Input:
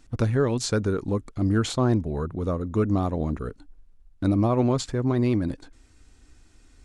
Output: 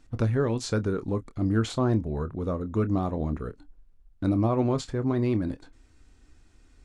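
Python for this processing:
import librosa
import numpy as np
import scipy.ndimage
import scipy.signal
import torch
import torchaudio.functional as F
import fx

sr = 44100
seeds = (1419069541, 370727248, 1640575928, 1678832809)

y = fx.high_shelf(x, sr, hz=4400.0, db=-6.0)
y = fx.doubler(y, sr, ms=27.0, db=-12.5)
y = y * librosa.db_to_amplitude(-2.5)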